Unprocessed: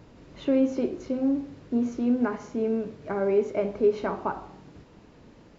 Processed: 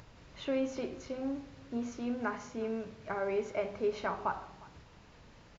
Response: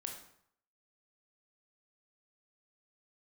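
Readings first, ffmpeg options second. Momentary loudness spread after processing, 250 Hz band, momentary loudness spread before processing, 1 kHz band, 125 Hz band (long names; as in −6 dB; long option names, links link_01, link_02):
9 LU, −12.0 dB, 8 LU, −3.0 dB, −8.0 dB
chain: -filter_complex "[0:a]equalizer=frequency=310:width=0.7:gain=-12.5,bandreject=frequency=50:width_type=h:width=6,bandreject=frequency=100:width_type=h:width=6,bandreject=frequency=150:width_type=h:width=6,bandreject=frequency=200:width_type=h:width=6,bandreject=frequency=250:width_type=h:width=6,acompressor=mode=upward:threshold=-52dB:ratio=2.5,asplit=2[link_01][link_02];[link_02]aecho=0:1:357:0.0794[link_03];[link_01][link_03]amix=inputs=2:normalize=0,aresample=16000,aresample=44100"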